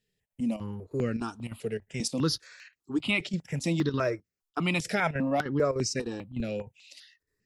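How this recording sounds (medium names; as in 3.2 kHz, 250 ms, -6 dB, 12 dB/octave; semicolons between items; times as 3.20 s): chopped level 3.3 Hz, depth 65%, duty 85%; notches that jump at a steady rate 5 Hz 280–3400 Hz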